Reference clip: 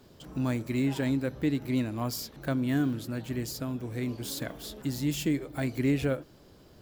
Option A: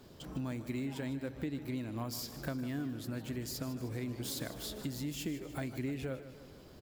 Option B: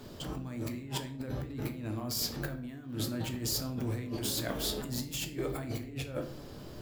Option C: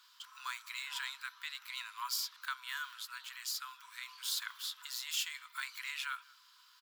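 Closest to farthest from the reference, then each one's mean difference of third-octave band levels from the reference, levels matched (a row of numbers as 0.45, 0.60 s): A, B, C; 5.0, 9.0, 20.0 dB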